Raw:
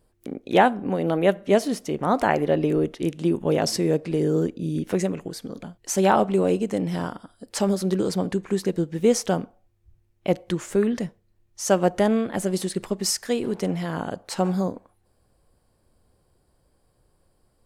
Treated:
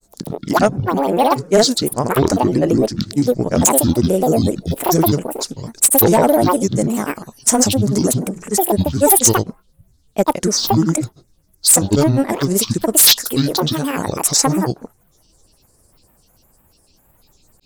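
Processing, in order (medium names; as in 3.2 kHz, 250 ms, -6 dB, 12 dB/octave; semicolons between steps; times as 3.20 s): resonant high shelf 4.7 kHz +10.5 dB, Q 3; granulator, pitch spread up and down by 12 st; sine folder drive 5 dB, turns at -5 dBFS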